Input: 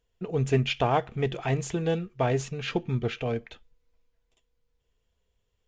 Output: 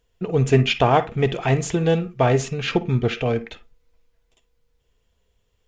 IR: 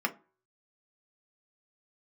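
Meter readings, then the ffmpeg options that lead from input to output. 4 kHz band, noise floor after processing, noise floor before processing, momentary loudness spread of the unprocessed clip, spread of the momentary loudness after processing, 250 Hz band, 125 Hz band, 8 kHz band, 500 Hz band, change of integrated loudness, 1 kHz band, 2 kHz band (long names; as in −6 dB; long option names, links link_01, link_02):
+7.5 dB, −68 dBFS, −76 dBFS, 6 LU, 7 LU, +7.5 dB, +7.5 dB, +7.5 dB, +7.5 dB, +7.5 dB, +7.5 dB, +7.5 dB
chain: -filter_complex "[0:a]asplit=2[link_01][link_02];[1:a]atrim=start_sample=2205,afade=type=out:start_time=0.17:duration=0.01,atrim=end_sample=7938,adelay=51[link_03];[link_02][link_03]afir=irnorm=-1:irlink=0,volume=-20.5dB[link_04];[link_01][link_04]amix=inputs=2:normalize=0,volume=7.5dB"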